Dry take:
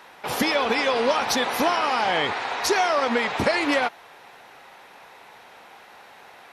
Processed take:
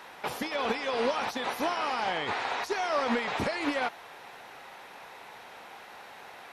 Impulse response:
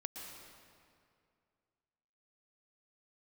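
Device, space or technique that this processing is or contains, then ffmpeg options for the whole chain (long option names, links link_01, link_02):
de-esser from a sidechain: -filter_complex "[0:a]asplit=2[link_01][link_02];[link_02]highpass=4500,apad=whole_len=287588[link_03];[link_01][link_03]sidechaincompress=threshold=-44dB:ratio=10:attack=2.9:release=21"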